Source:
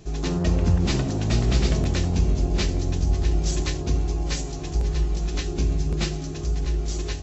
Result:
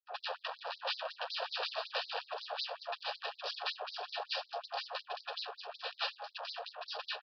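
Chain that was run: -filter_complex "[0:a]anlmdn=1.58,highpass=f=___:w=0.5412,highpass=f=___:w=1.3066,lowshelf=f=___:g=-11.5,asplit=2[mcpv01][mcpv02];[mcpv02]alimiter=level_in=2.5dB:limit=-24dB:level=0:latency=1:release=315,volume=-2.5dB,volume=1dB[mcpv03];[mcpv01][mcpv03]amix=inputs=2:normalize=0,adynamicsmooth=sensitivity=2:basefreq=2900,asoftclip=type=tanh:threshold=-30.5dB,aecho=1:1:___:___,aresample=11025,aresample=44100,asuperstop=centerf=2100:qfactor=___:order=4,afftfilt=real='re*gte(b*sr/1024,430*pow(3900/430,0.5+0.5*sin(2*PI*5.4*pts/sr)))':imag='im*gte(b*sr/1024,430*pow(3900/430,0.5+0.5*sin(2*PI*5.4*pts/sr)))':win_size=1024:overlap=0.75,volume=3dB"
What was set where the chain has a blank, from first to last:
77, 77, 240, 464, 0.562, 3.5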